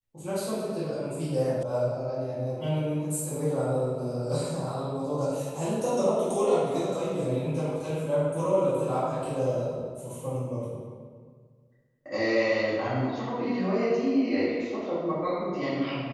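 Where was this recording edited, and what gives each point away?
0:01.63: cut off before it has died away

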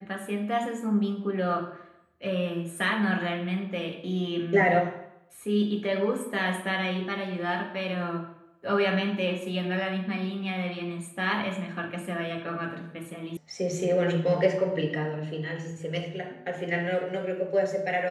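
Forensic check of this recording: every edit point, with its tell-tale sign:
0:13.37: cut off before it has died away

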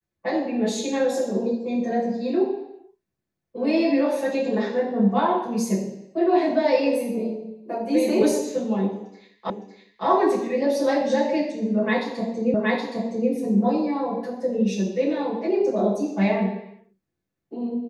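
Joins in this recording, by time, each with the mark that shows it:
0:09.50: the same again, the last 0.56 s
0:12.54: the same again, the last 0.77 s

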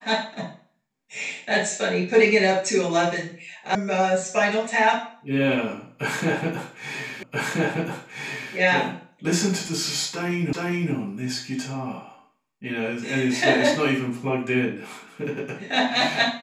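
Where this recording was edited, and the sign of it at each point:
0:03.75: cut off before it has died away
0:07.23: the same again, the last 1.33 s
0:10.53: the same again, the last 0.41 s

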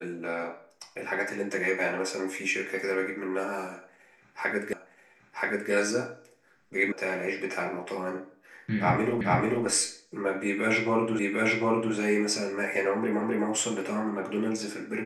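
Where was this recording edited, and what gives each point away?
0:04.73: the same again, the last 0.98 s
0:06.92: cut off before it has died away
0:09.21: the same again, the last 0.44 s
0:11.19: the same again, the last 0.75 s
0:13.21: the same again, the last 0.26 s

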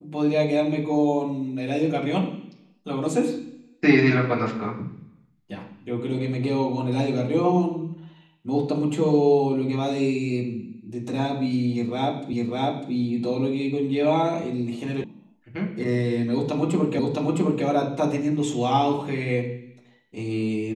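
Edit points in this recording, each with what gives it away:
0:12.33: the same again, the last 0.6 s
0:15.04: cut off before it has died away
0:16.99: the same again, the last 0.66 s

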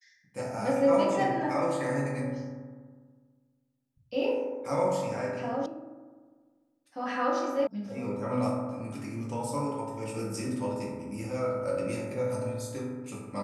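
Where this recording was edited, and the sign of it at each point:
0:05.66: cut off before it has died away
0:07.67: cut off before it has died away

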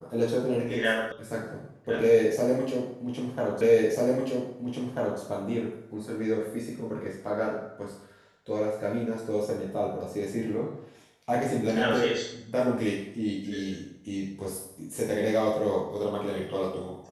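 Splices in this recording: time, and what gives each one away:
0:01.12: cut off before it has died away
0:03.61: the same again, the last 1.59 s

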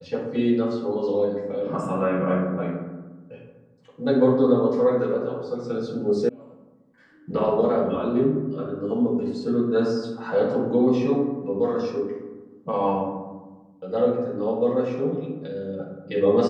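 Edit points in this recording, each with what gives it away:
0:06.29: cut off before it has died away

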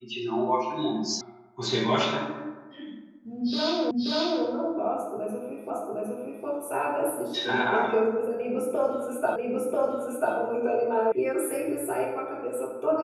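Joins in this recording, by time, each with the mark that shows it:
0:01.21: cut off before it has died away
0:03.91: the same again, the last 0.53 s
0:05.70: the same again, the last 0.76 s
0:09.36: the same again, the last 0.99 s
0:11.12: cut off before it has died away

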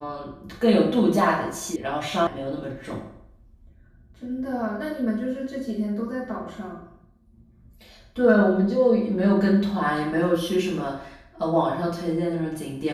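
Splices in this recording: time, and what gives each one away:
0:01.76: cut off before it has died away
0:02.27: cut off before it has died away

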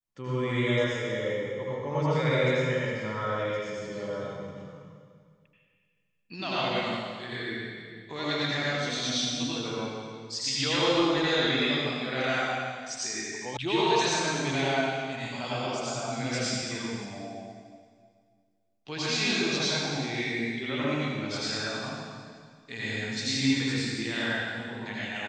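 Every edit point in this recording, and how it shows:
0:13.57: cut off before it has died away

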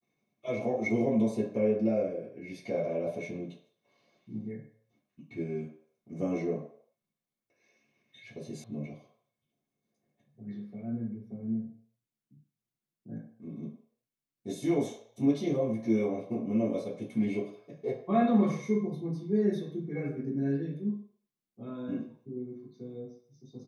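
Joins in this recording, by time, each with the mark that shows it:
0:08.64: cut off before it has died away

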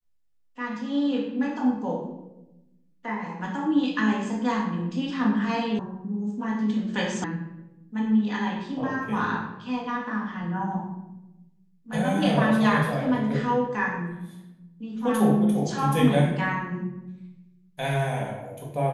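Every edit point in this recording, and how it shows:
0:05.79: cut off before it has died away
0:07.24: cut off before it has died away

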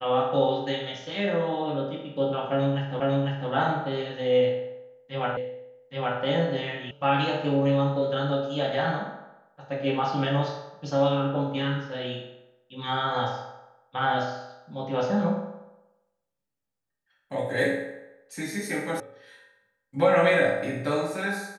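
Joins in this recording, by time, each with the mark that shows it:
0:03.00: the same again, the last 0.5 s
0:05.37: the same again, the last 0.82 s
0:06.91: cut off before it has died away
0:19.00: cut off before it has died away

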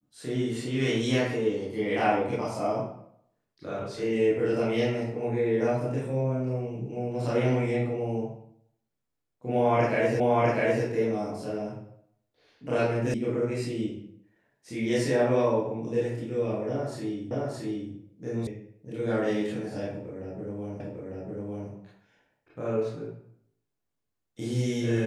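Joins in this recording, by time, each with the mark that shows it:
0:10.20: the same again, the last 0.65 s
0:13.14: cut off before it has died away
0:17.31: the same again, the last 0.62 s
0:18.47: cut off before it has died away
0:20.80: the same again, the last 0.9 s

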